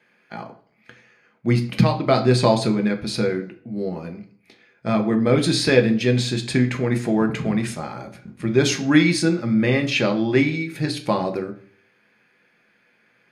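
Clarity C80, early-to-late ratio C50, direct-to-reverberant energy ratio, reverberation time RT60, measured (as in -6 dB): 17.0 dB, 13.0 dB, 5.0 dB, 0.50 s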